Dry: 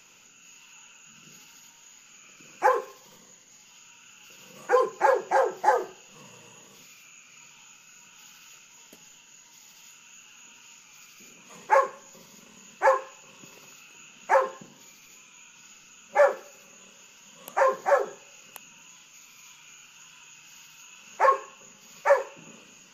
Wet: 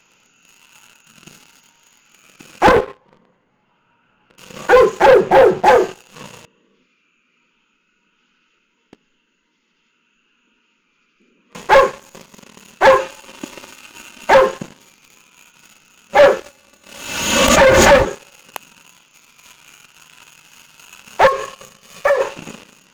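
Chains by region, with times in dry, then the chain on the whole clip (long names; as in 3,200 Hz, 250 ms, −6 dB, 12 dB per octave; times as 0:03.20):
0:02.67–0:04.38: one scale factor per block 3 bits + low-pass filter 1,400 Hz + highs frequency-modulated by the lows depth 0.55 ms
0:05.06–0:05.66: RIAA equalisation playback + multiband upward and downward expander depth 40%
0:06.45–0:11.55: head-to-tape spacing loss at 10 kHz 31 dB + phaser with its sweep stopped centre 310 Hz, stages 4
0:12.99–0:14.32: high-shelf EQ 7,800 Hz −4 dB + comb filter 3.3 ms, depth 93%
0:16.41–0:18.06: lower of the sound and its delayed copy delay 3.4 ms + high-pass filter 43 Hz + background raised ahead of every attack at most 41 dB per second
0:21.27–0:22.21: comb filter 1.7 ms, depth 67% + downward compressor 8 to 1, threshold −28 dBFS
whole clip: low-pass filter 3,000 Hz 6 dB per octave; dynamic equaliser 970 Hz, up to −6 dB, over −35 dBFS, Q 1; leveller curve on the samples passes 3; level +8.5 dB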